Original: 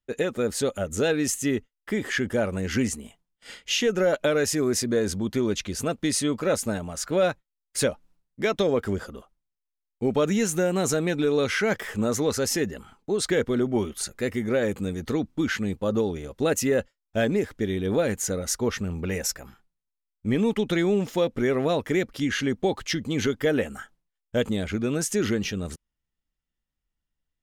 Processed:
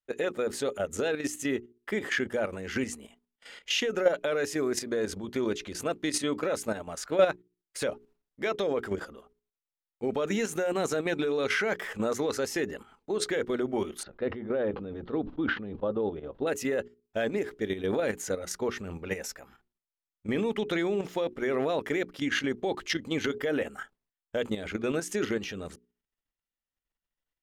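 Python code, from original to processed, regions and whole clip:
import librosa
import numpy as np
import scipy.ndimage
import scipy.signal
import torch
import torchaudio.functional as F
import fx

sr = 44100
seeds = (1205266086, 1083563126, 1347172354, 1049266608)

y = fx.chain(x, sr, fx.cheby2_lowpass(hz=7800.0, order=4, stop_db=50),
    fx.peak_eq(hz=2200.0, db=-12.5, octaves=0.98),
    fx.sustainer(db_per_s=78.0), at=(14.03, 16.47))
y = fx.bass_treble(y, sr, bass_db=-10, treble_db=-6)
y = fx.hum_notches(y, sr, base_hz=60, count=7)
y = fx.level_steps(y, sr, step_db=10)
y = y * librosa.db_to_amplitude(2.5)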